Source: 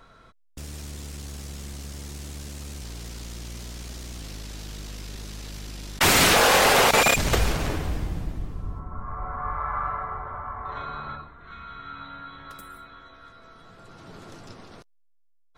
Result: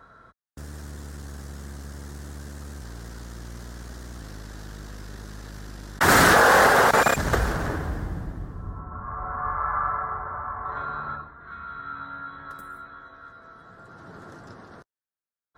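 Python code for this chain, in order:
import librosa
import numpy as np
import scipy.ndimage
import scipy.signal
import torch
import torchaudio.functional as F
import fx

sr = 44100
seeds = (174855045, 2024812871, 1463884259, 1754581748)

y = scipy.signal.sosfilt(scipy.signal.butter(2, 47.0, 'highpass', fs=sr, output='sos'), x)
y = fx.high_shelf_res(y, sr, hz=2000.0, db=-6.0, q=3.0)
y = fx.env_flatten(y, sr, amount_pct=100, at=(6.08, 6.67))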